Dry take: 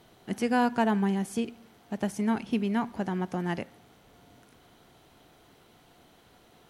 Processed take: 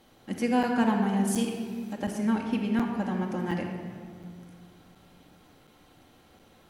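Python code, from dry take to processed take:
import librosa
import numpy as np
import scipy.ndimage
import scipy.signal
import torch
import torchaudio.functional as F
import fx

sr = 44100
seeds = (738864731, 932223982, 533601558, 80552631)

y = fx.high_shelf(x, sr, hz=3400.0, db=11.5, at=(1.27, 1.93))
y = fx.room_shoebox(y, sr, seeds[0], volume_m3=3300.0, walls='mixed', distance_m=2.2)
y = fx.buffer_crackle(y, sr, first_s=0.63, period_s=0.72, block=256, kind='zero')
y = F.gain(torch.from_numpy(y), -2.5).numpy()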